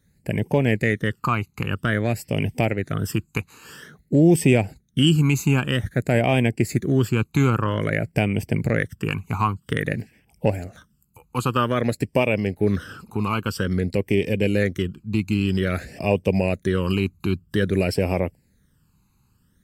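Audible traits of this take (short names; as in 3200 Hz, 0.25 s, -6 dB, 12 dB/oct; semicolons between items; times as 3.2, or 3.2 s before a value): phasing stages 12, 0.51 Hz, lowest notch 570–1300 Hz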